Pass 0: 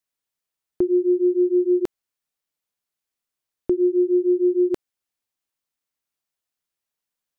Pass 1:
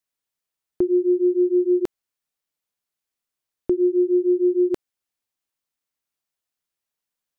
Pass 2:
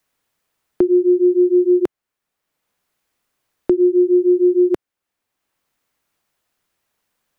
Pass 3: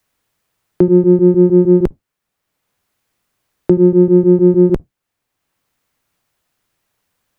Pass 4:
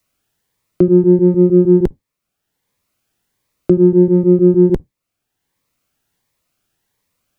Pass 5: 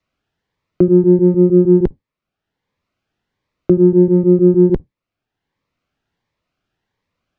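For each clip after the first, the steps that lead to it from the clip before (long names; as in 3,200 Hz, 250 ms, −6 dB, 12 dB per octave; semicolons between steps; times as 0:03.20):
no processing that can be heard
multiband upward and downward compressor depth 40%; level +5 dB
sub-octave generator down 1 octave, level +1 dB; level +3 dB
phaser whose notches keep moving one way rising 1.4 Hz
high-frequency loss of the air 200 metres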